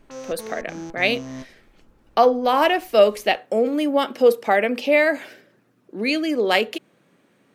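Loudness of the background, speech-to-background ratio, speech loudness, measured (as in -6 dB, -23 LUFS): -36.5 LUFS, 16.5 dB, -20.0 LUFS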